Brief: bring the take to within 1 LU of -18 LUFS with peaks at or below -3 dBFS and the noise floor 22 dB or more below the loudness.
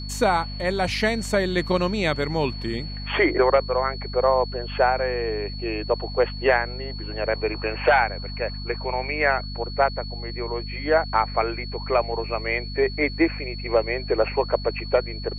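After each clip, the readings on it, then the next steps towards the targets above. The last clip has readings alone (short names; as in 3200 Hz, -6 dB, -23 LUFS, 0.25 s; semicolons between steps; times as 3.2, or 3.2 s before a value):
hum 50 Hz; harmonics up to 250 Hz; hum level -31 dBFS; steady tone 4400 Hz; tone level -37 dBFS; loudness -24.0 LUFS; peak -6.5 dBFS; loudness target -18.0 LUFS
-> de-hum 50 Hz, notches 5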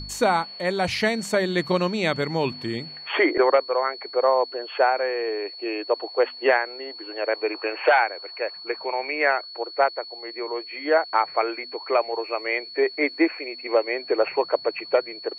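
hum none; steady tone 4400 Hz; tone level -37 dBFS
-> notch 4400 Hz, Q 30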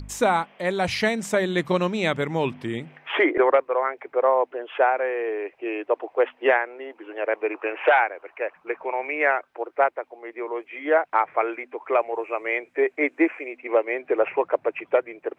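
steady tone none; loudness -24.0 LUFS; peak -6.5 dBFS; loudness target -18.0 LUFS
-> gain +6 dB; limiter -3 dBFS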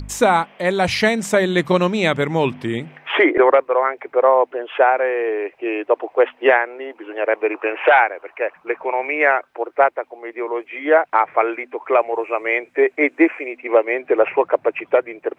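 loudness -18.5 LUFS; peak -3.0 dBFS; noise floor -55 dBFS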